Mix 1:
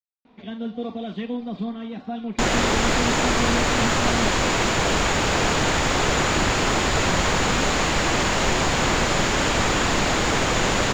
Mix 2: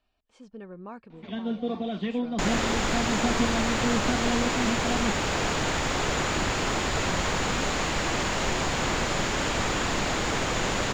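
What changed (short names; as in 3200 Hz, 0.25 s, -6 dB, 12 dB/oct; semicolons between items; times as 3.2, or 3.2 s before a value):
speech: unmuted; first sound: entry +0.85 s; second sound -6.0 dB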